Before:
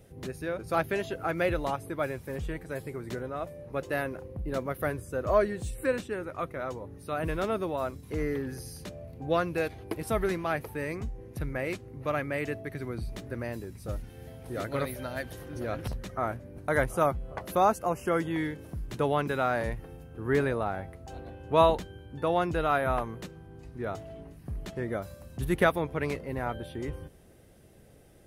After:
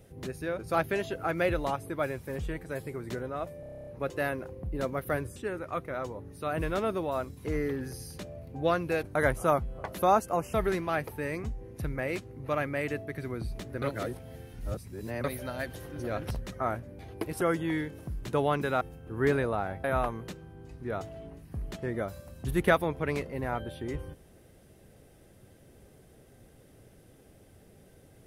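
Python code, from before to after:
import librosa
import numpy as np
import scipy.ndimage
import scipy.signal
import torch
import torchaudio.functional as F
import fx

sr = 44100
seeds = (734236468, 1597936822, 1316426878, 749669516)

y = fx.edit(x, sr, fx.stutter(start_s=3.6, slice_s=0.03, count=10),
    fx.cut(start_s=5.09, length_s=0.93),
    fx.swap(start_s=9.69, length_s=0.42, other_s=16.56, other_length_s=1.51),
    fx.reverse_span(start_s=13.39, length_s=1.42),
    fx.cut(start_s=19.47, length_s=0.42),
    fx.cut(start_s=20.92, length_s=1.86), tone=tone)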